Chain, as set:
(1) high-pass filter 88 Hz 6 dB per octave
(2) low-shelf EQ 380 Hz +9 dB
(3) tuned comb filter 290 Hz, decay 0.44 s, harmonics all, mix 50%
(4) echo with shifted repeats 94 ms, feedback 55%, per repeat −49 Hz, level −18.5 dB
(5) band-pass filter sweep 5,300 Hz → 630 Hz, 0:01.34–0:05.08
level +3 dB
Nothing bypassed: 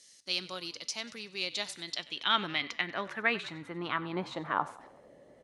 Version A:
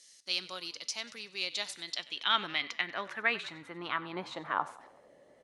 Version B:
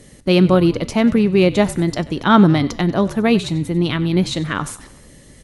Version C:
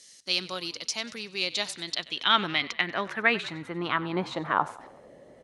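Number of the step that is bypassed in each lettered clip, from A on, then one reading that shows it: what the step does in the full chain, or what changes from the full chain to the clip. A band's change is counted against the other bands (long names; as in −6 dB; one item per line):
2, 125 Hz band −6.5 dB
5, 125 Hz band +17.0 dB
3, change in integrated loudness +5.5 LU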